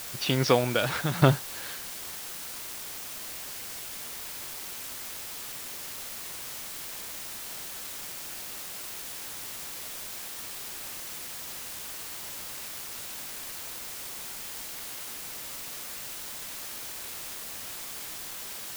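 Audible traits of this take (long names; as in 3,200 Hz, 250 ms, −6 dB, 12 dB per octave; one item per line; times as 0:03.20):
tremolo saw down 0.82 Hz, depth 80%
a quantiser's noise floor 8 bits, dither triangular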